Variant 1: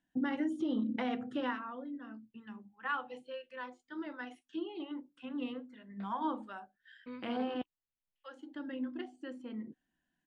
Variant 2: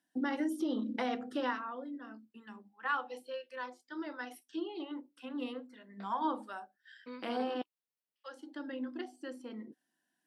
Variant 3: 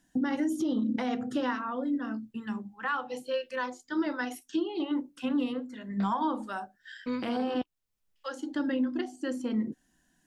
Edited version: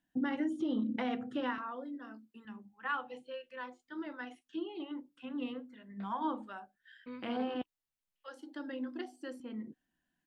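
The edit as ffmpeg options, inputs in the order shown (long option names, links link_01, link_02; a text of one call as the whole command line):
ffmpeg -i take0.wav -i take1.wav -filter_complex "[1:a]asplit=2[link_01][link_02];[0:a]asplit=3[link_03][link_04][link_05];[link_03]atrim=end=1.582[link_06];[link_01]atrim=start=1.578:end=2.452[link_07];[link_04]atrim=start=2.448:end=8.282[link_08];[link_02]atrim=start=8.278:end=9.402[link_09];[link_05]atrim=start=9.398[link_10];[link_06][link_07]acrossfade=duration=0.004:curve1=hsin:curve2=hsin[link_11];[link_11][link_08]acrossfade=duration=0.004:curve1=hsin:curve2=hsin[link_12];[link_12][link_09]acrossfade=duration=0.004:curve1=hsin:curve2=hsin[link_13];[link_13][link_10]acrossfade=duration=0.004:curve1=hsin:curve2=hsin" out.wav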